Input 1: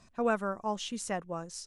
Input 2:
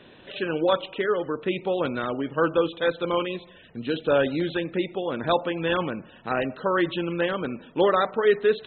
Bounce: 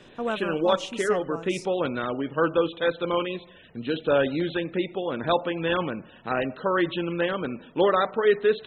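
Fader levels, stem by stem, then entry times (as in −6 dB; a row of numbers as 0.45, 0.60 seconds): 0.0, −0.5 decibels; 0.00, 0.00 seconds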